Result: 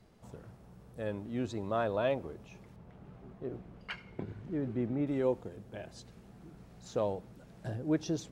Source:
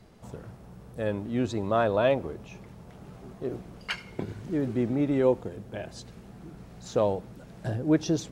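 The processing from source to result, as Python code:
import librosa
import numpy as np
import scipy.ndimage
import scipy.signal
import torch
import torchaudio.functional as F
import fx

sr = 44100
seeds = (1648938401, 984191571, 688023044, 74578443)

y = fx.bass_treble(x, sr, bass_db=2, treble_db=-12, at=(2.76, 5.07))
y = y * 10.0 ** (-7.5 / 20.0)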